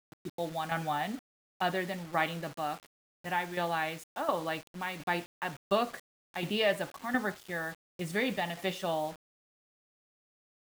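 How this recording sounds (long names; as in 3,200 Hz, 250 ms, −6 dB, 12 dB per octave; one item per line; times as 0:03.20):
tremolo saw down 1.4 Hz, depth 60%
a quantiser's noise floor 8 bits, dither none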